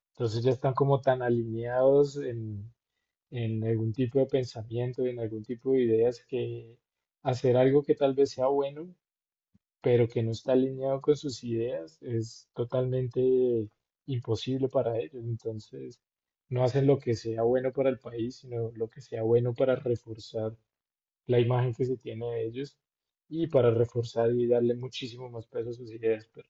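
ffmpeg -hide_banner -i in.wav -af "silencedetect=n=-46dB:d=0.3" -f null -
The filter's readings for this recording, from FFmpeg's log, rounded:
silence_start: 2.68
silence_end: 3.32 | silence_duration: 0.64
silence_start: 6.71
silence_end: 7.25 | silence_duration: 0.54
silence_start: 8.92
silence_end: 9.84 | silence_duration: 0.92
silence_start: 13.67
silence_end: 14.08 | silence_duration: 0.41
silence_start: 15.93
silence_end: 16.51 | silence_duration: 0.58
silence_start: 20.55
silence_end: 21.29 | silence_duration: 0.74
silence_start: 22.68
silence_end: 23.31 | silence_duration: 0.63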